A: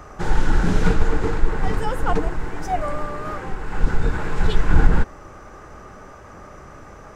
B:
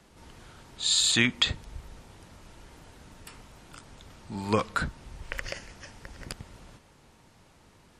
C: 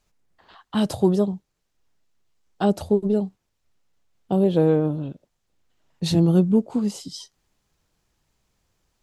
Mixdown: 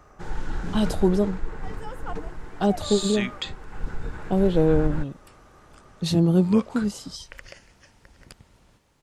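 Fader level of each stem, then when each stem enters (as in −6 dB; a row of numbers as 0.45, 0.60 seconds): −12.0, −8.0, −1.5 decibels; 0.00, 2.00, 0.00 seconds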